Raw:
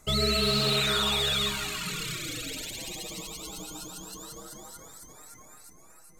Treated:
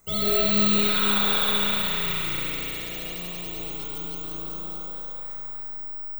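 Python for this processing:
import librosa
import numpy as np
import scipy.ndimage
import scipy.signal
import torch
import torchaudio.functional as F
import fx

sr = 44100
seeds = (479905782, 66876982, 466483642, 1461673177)

y = fx.rev_spring(x, sr, rt60_s=3.9, pass_ms=(34,), chirp_ms=75, drr_db=-9.0)
y = (np.kron(scipy.signal.resample_poly(y, 1, 2), np.eye(2)[0]) * 2)[:len(y)]
y = y * librosa.db_to_amplitude(-6.0)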